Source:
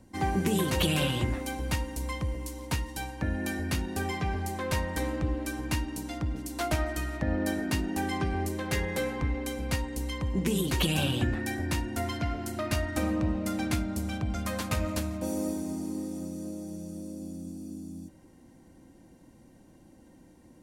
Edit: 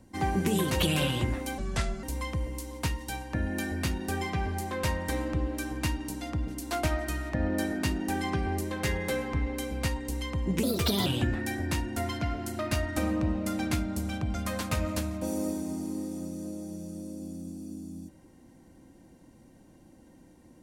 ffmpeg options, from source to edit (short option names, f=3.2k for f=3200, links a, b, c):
-filter_complex "[0:a]asplit=5[a][b][c][d][e];[a]atrim=end=1.584[f];[b]atrim=start=1.58:end=1.91,asetpts=PTS-STARTPTS,asetrate=32193,aresample=44100[g];[c]atrim=start=1.906:end=10.514[h];[d]atrim=start=10.51:end=11.06,asetpts=PTS-STARTPTS,asetrate=56448,aresample=44100,atrim=end_sample=18949,asetpts=PTS-STARTPTS[i];[e]atrim=start=11.056[j];[f][g]acrossfade=d=0.004:c1=hsin:c2=hsin[k];[k][h]acrossfade=d=0.004:c1=hsin:c2=hsin[l];[l][i]acrossfade=d=0.004:c1=hsin:c2=hsin[m];[m][j]acrossfade=d=0.004:c1=hsin:c2=hsin"